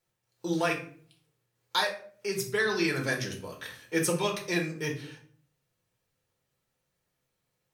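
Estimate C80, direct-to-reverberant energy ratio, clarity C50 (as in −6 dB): 14.0 dB, −0.5 dB, 9.5 dB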